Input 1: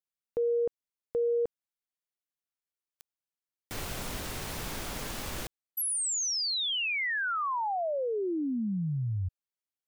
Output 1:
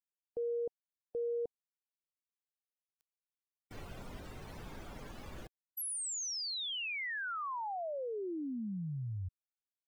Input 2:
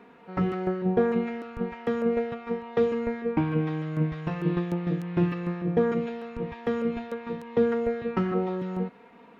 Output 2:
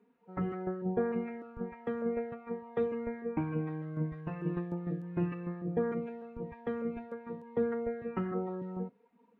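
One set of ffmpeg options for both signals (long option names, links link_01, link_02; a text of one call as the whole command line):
ffmpeg -i in.wav -af "afftdn=noise_reduction=16:noise_floor=-40,volume=-8dB" out.wav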